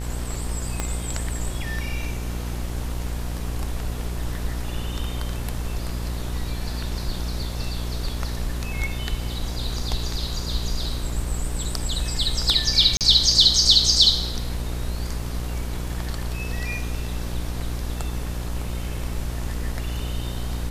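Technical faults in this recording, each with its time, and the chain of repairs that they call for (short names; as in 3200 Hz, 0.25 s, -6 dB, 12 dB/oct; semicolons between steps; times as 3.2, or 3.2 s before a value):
buzz 60 Hz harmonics 32 -29 dBFS
0.8 pop -10 dBFS
12.97–13.01 gap 38 ms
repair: de-click; de-hum 60 Hz, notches 32; interpolate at 12.97, 38 ms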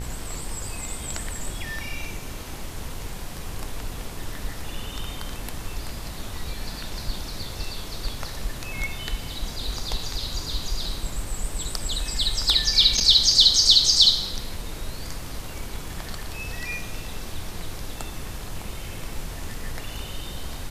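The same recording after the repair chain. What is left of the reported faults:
0.8 pop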